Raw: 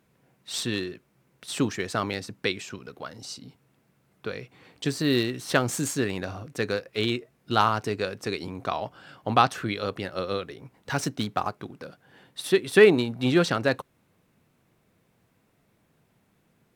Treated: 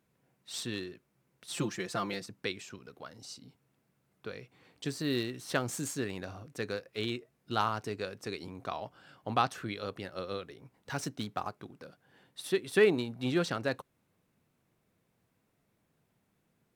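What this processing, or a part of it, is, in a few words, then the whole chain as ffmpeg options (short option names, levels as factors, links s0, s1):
exciter from parts: -filter_complex "[0:a]asettb=1/sr,asplit=3[s0][s1][s2];[s0]atrim=end=1.504[s3];[s1]atrim=start=1.5:end=2.26,asetpts=PTS-STARTPTS,afade=t=in:d=0.004:c=qsin,afade=t=out:st=0.756:d=0.004:c=qsin,aecho=1:1:5.8:0.87,atrim=end_sample=33516[s4];[s2]atrim=start=2.256[s5];[s3][s4]acrossfade=d=0.004:c1=hsin:c2=qsin[s6];[s6][s5]acrossfade=d=0.004:c1=qsin:c2=hsin,asplit=2[s7][s8];[s8]highpass=3600,asoftclip=type=tanh:threshold=0.0398,volume=0.224[s9];[s7][s9]amix=inputs=2:normalize=0,volume=0.376"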